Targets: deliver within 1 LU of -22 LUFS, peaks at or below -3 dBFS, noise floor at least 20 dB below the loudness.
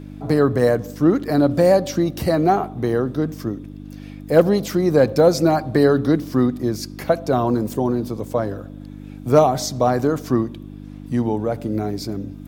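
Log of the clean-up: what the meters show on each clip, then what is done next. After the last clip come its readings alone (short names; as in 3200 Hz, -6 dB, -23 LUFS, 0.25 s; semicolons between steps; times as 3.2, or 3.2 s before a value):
hum 50 Hz; harmonics up to 300 Hz; hum level -35 dBFS; loudness -19.5 LUFS; peak -2.0 dBFS; loudness target -22.0 LUFS
-> de-hum 50 Hz, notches 6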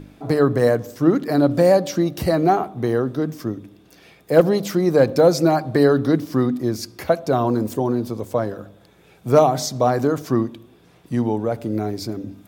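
hum none; loudness -19.5 LUFS; peak -2.0 dBFS; loudness target -22.0 LUFS
-> gain -2.5 dB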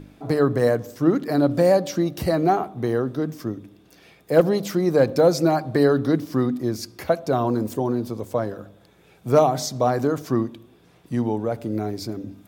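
loudness -22.0 LUFS; peak -4.5 dBFS; noise floor -55 dBFS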